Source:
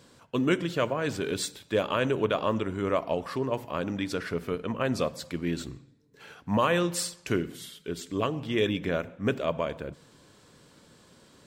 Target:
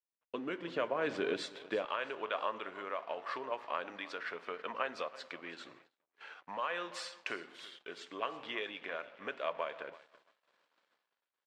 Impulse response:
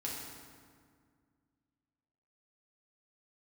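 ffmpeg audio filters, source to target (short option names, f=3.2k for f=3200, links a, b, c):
-af "flanger=delay=3.6:depth=6.9:regen=-86:speed=0.19:shape=sinusoidal,acompressor=threshold=-36dB:ratio=4,tremolo=f=0.84:d=0.28,aecho=1:1:329|658|987|1316:0.133|0.0573|0.0247|0.0106,dynaudnorm=f=370:g=3:m=5.5dB,aeval=exprs='sgn(val(0))*max(abs(val(0))-0.00126,0)':c=same,asetnsamples=n=441:p=0,asendcmd='1.85 highpass f 770',highpass=350,lowpass=2.9k,agate=range=-33dB:threshold=-58dB:ratio=3:detection=peak,volume=3dB"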